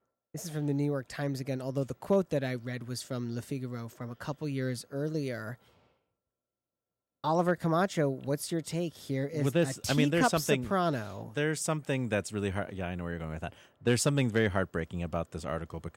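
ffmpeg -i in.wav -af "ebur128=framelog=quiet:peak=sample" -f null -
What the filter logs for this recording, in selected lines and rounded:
Integrated loudness:
  I:         -31.8 LUFS
  Threshold: -42.0 LUFS
Loudness range:
  LRA:         7.5 LU
  Threshold: -52.3 LUFS
  LRA low:   -37.1 LUFS
  LRA high:  -29.6 LUFS
Sample peak:
  Peak:      -12.7 dBFS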